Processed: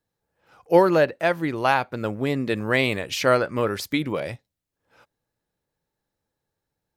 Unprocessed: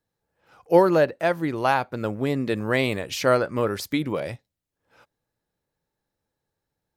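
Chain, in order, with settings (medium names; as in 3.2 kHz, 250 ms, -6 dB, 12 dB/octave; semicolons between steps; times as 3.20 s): dynamic bell 2.5 kHz, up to +4 dB, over -37 dBFS, Q 0.85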